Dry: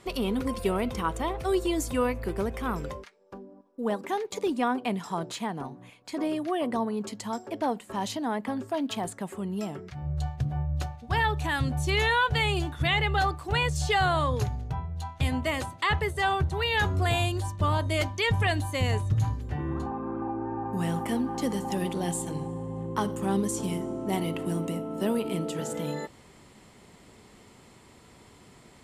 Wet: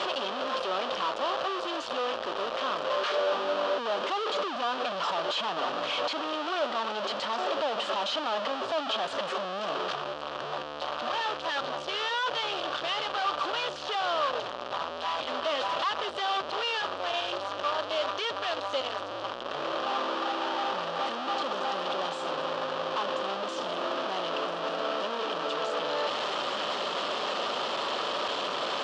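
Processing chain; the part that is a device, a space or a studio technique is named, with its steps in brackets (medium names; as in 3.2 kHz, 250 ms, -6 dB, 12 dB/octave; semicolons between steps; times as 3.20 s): home computer beeper (one-bit comparator; cabinet simulation 520–4500 Hz, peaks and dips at 580 Hz +9 dB, 1.2 kHz +7 dB, 2.1 kHz -10 dB, 3.1 kHz +6 dB)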